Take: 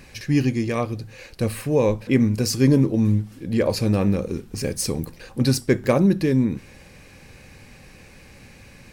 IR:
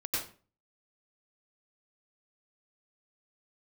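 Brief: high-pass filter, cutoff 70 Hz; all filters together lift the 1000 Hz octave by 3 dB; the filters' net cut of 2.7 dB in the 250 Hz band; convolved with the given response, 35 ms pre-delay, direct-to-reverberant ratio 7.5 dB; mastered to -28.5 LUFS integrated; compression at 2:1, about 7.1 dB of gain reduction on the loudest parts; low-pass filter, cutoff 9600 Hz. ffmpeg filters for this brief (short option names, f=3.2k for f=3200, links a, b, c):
-filter_complex "[0:a]highpass=70,lowpass=9.6k,equalizer=f=250:t=o:g=-3.5,equalizer=f=1k:t=o:g=4,acompressor=threshold=-27dB:ratio=2,asplit=2[a][b];[1:a]atrim=start_sample=2205,adelay=35[c];[b][c]afir=irnorm=-1:irlink=0,volume=-12.5dB[d];[a][d]amix=inputs=2:normalize=0,volume=-0.5dB"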